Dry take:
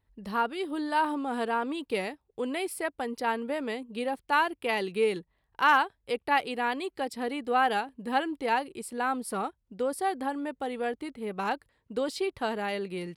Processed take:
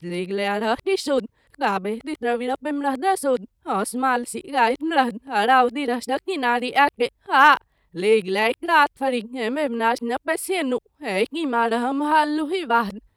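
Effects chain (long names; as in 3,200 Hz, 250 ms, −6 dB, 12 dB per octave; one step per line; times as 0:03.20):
played backwards from end to start
level +8.5 dB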